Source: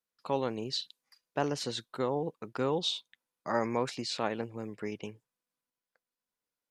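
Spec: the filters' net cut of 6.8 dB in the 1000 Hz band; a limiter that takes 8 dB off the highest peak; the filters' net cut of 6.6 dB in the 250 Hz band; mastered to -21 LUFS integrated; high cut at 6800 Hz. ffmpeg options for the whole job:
-af "lowpass=6.8k,equalizer=f=250:t=o:g=-8,equalizer=f=1k:t=o:g=-8.5,volume=19dB,alimiter=limit=-8.5dB:level=0:latency=1"

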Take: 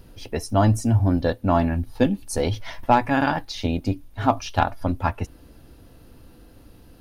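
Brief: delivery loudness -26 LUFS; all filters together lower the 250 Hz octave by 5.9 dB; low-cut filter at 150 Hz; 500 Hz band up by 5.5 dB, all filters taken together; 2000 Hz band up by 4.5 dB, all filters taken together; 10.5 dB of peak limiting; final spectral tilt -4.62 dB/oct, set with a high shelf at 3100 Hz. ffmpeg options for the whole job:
-af "highpass=150,equalizer=f=250:t=o:g=-8.5,equalizer=f=500:t=o:g=8.5,equalizer=f=2k:t=o:g=7,highshelf=f=3.1k:g=-4.5,volume=0.5dB,alimiter=limit=-11dB:level=0:latency=1"

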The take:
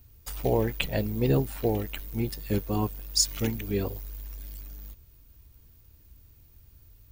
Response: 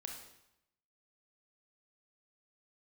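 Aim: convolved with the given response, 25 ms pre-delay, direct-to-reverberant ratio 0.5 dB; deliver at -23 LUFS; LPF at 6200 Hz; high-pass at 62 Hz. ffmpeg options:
-filter_complex "[0:a]highpass=62,lowpass=6.2k,asplit=2[a][b];[1:a]atrim=start_sample=2205,adelay=25[c];[b][c]afir=irnorm=-1:irlink=0,volume=2dB[d];[a][d]amix=inputs=2:normalize=0,volume=4dB"

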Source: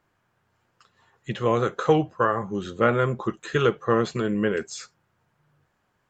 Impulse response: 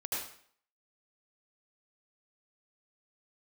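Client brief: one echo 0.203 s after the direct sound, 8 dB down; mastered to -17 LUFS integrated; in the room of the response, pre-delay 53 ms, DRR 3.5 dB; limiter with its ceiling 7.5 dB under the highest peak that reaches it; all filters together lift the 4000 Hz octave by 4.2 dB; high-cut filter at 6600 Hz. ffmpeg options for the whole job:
-filter_complex "[0:a]lowpass=6.6k,equalizer=f=4k:t=o:g=6,alimiter=limit=-12dB:level=0:latency=1,aecho=1:1:203:0.398,asplit=2[a][b];[1:a]atrim=start_sample=2205,adelay=53[c];[b][c]afir=irnorm=-1:irlink=0,volume=-7dB[d];[a][d]amix=inputs=2:normalize=0,volume=7.5dB"

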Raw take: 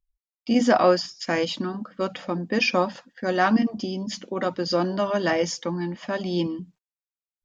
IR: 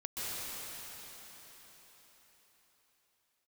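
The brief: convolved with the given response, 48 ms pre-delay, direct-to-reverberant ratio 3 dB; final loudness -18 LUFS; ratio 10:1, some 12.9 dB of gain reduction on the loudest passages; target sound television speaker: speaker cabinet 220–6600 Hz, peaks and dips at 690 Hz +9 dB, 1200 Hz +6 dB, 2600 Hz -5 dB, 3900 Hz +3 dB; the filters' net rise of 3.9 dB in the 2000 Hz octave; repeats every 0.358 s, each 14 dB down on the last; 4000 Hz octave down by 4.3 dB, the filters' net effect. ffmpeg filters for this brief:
-filter_complex "[0:a]equalizer=f=2k:t=o:g=7,equalizer=f=4k:t=o:g=-8,acompressor=threshold=-26dB:ratio=10,aecho=1:1:358|716:0.2|0.0399,asplit=2[a][b];[1:a]atrim=start_sample=2205,adelay=48[c];[b][c]afir=irnorm=-1:irlink=0,volume=-7.5dB[d];[a][d]amix=inputs=2:normalize=0,highpass=f=220:w=0.5412,highpass=f=220:w=1.3066,equalizer=f=690:t=q:w=4:g=9,equalizer=f=1.2k:t=q:w=4:g=6,equalizer=f=2.6k:t=q:w=4:g=-5,equalizer=f=3.9k:t=q:w=4:g=3,lowpass=f=6.6k:w=0.5412,lowpass=f=6.6k:w=1.3066,volume=10.5dB"

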